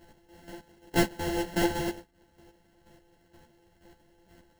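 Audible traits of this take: a buzz of ramps at a fixed pitch in blocks of 128 samples; chopped level 2.1 Hz, depth 60%, duty 25%; aliases and images of a low sample rate 1200 Hz, jitter 0%; a shimmering, thickened sound

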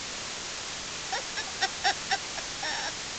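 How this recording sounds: a buzz of ramps at a fixed pitch in blocks of 8 samples; chopped level 0.68 Hz, depth 60%, duty 55%; a quantiser's noise floor 6-bit, dither triangular; µ-law

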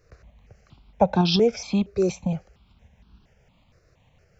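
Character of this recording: tremolo saw up 6.6 Hz, depth 35%; notches that jump at a steady rate 4.3 Hz 880–2000 Hz

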